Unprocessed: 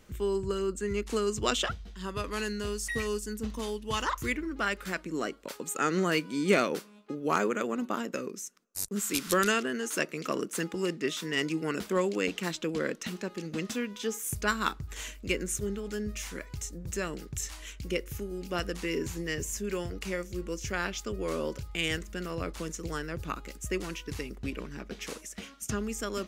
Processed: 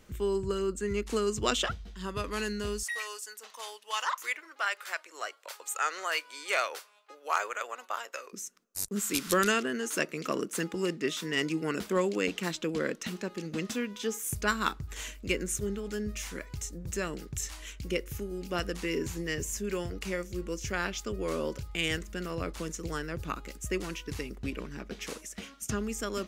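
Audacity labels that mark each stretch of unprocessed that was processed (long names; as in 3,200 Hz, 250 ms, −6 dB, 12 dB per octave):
2.830000	8.330000	high-pass filter 650 Hz 24 dB per octave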